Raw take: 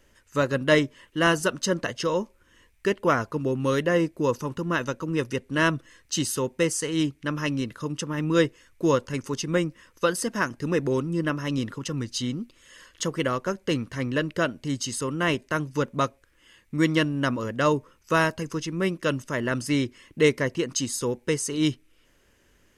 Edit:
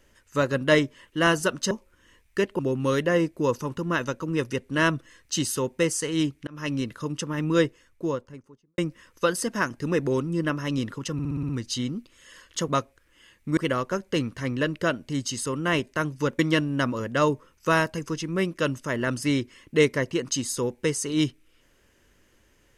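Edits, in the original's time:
1.71–2.19 cut
3.07–3.39 cut
7.27–7.54 fade in
8.23–9.58 studio fade out
11.93 stutter 0.06 s, 7 plays
15.94–16.83 move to 13.12

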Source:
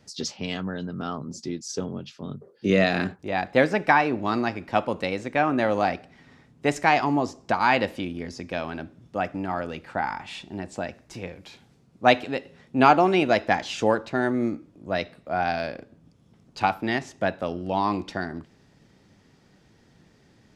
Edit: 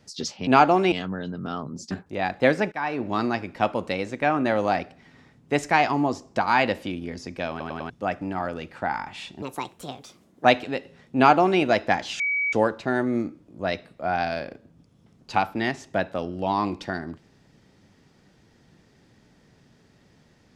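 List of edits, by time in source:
1.46–3.04 cut
3.85–4.22 fade in, from -22 dB
8.63 stutter in place 0.10 s, 4 plays
10.55–12.05 speed 146%
12.76–13.21 copy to 0.47
13.8 add tone 2270 Hz -21.5 dBFS 0.33 s

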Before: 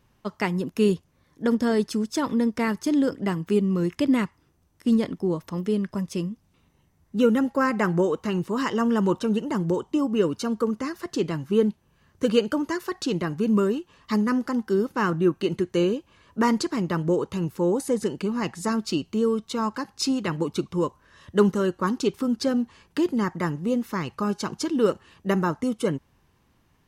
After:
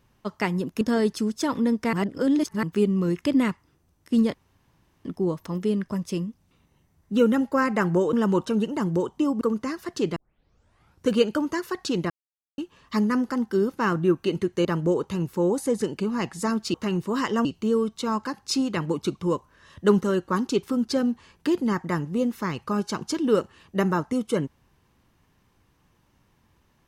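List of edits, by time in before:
0.81–1.55 cut
2.67–3.37 reverse
5.08 insert room tone 0.71 s
8.16–8.87 move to 18.96
10.15–10.58 cut
11.33 tape start 0.91 s
13.27–13.75 mute
15.82–16.87 cut

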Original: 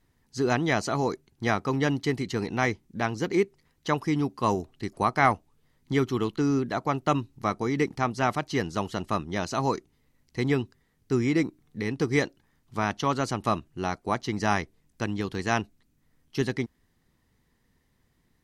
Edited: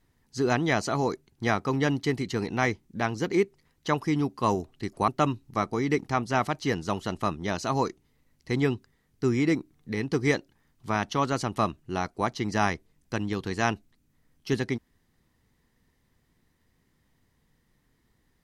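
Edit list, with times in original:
5.08–6.96 cut

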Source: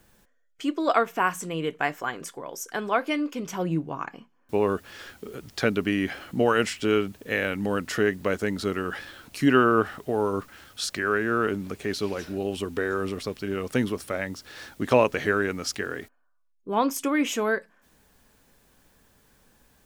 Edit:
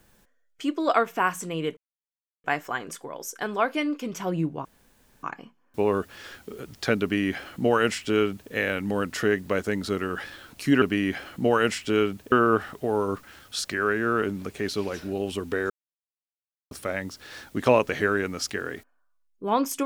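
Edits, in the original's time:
1.77 insert silence 0.67 s
3.98 insert room tone 0.58 s
5.77–7.27 copy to 9.57
12.95–13.96 mute

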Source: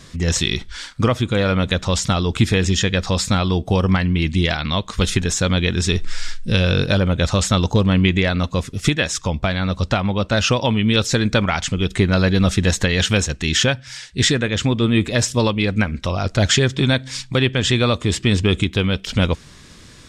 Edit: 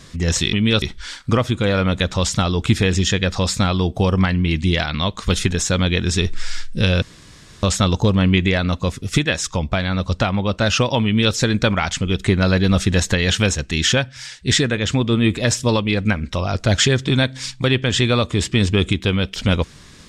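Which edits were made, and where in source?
6.73–7.34 room tone
10.76–11.05 copy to 0.53

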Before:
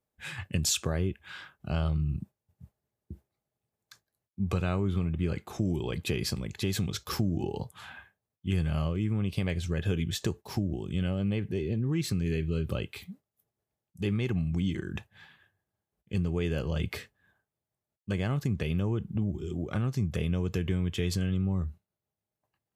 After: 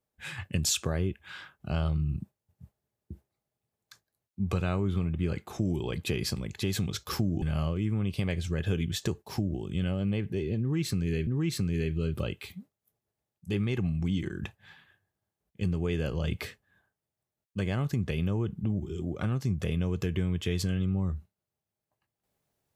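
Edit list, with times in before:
7.42–8.61 cut
11.79–12.46 loop, 2 plays

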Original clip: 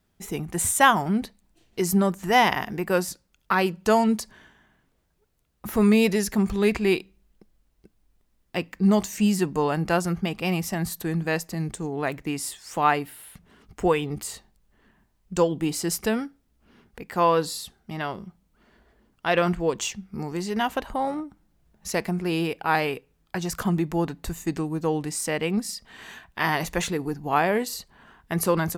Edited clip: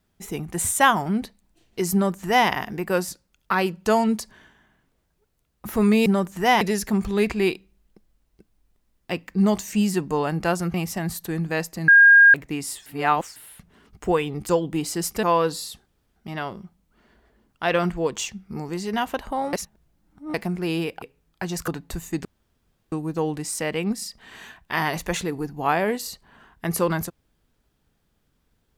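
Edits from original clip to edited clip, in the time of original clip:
1.93–2.48 copy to 6.06
10.19–10.5 cut
11.64–12.1 bleep 1620 Hz -8 dBFS
12.62–13.12 reverse
14.25–15.37 cut
16.11–17.16 cut
17.79 insert room tone 0.30 s
21.16–21.97 reverse
22.65–22.95 cut
23.61–24.02 cut
24.59 insert room tone 0.67 s

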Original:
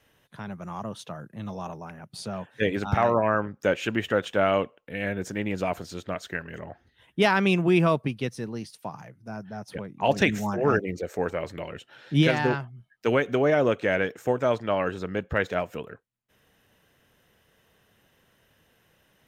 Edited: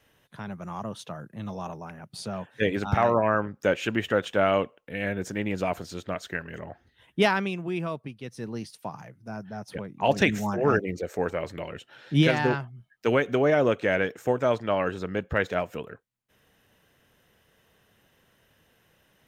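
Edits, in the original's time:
7.23–8.52 dip -10 dB, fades 0.28 s

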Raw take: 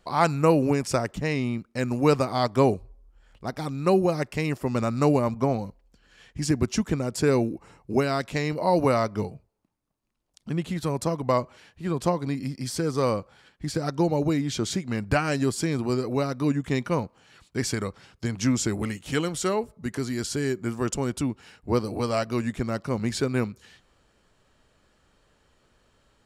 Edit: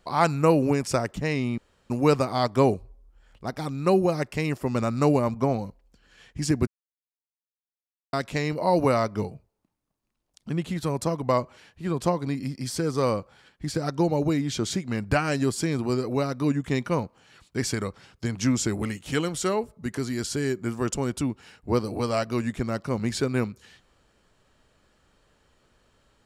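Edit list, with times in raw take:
1.58–1.9 room tone
6.67–8.13 mute

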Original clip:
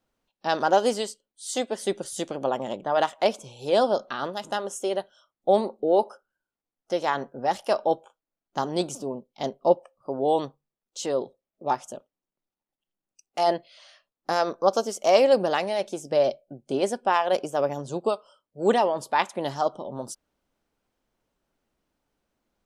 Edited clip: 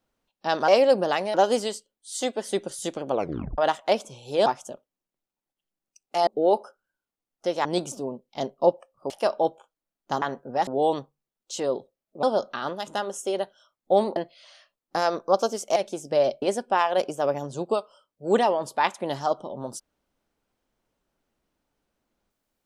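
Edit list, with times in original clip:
2.46 tape stop 0.46 s
3.8–5.73 swap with 11.69–13.5
7.11–7.56 swap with 8.68–10.13
15.1–15.76 move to 0.68
16.42–16.77 cut

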